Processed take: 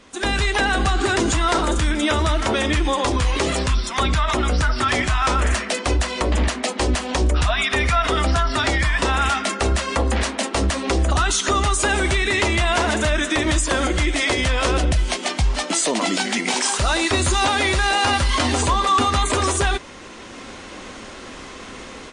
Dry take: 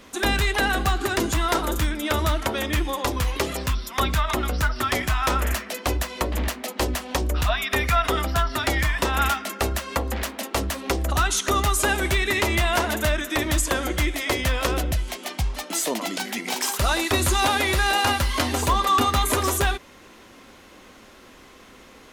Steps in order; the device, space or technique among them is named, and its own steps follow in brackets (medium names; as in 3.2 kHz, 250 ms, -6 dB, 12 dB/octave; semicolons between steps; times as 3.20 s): low-bitrate web radio (level rider gain up to 13 dB; peak limiter -9.5 dBFS, peak gain reduction 7.5 dB; trim -1 dB; MP3 40 kbps 22.05 kHz)